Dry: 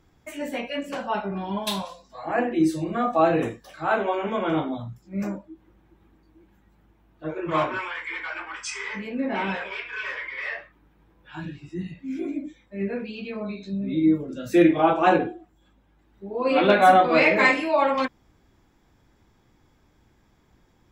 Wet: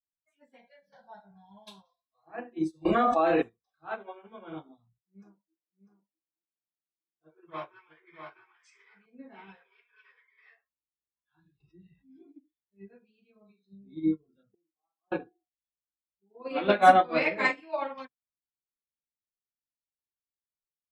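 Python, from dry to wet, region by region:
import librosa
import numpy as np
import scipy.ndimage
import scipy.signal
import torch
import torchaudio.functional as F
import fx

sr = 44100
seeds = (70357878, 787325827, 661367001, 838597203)

y = fx.chain(x, sr, fx.highpass(hz=78.0, slope=12),
    fx.fixed_phaser(hz=1800.0, stages=8),
    fx.env_flatten(amount_pct=50), at=(0.58, 1.68))
y = fx.chain(y, sr, fx.peak_eq(hz=140.0, db=-14.5, octaves=0.97),
    fx.env_flatten(amount_pct=100), at=(2.85, 3.42))
y = fx.chain(y, sr, fx.highpass(hz=150.0, slope=12),
    fx.echo_single(ms=649, db=-3.5), at=(5.01, 9.06))
y = fx.chain(y, sr, fx.air_absorb(metres=110.0),
    fx.env_flatten(amount_pct=70), at=(11.6, 12.19))
y = fx.chain(y, sr, fx.ellip_bandpass(low_hz=120.0, high_hz=1300.0, order=3, stop_db=40),
    fx.gate_flip(shuts_db=-19.0, range_db=-30), at=(14.43, 15.12))
y = scipy.signal.sosfilt(scipy.signal.butter(2, 9300.0, 'lowpass', fs=sr, output='sos'), y)
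y = fx.noise_reduce_blind(y, sr, reduce_db=17)
y = fx.upward_expand(y, sr, threshold_db=-34.0, expansion=2.5)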